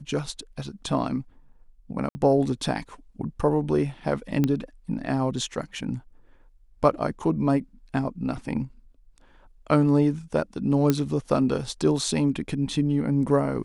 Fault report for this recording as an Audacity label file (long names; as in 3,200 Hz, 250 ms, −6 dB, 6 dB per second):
2.090000	2.150000	drop-out 60 ms
4.440000	4.440000	click −11 dBFS
10.900000	10.900000	click −8 dBFS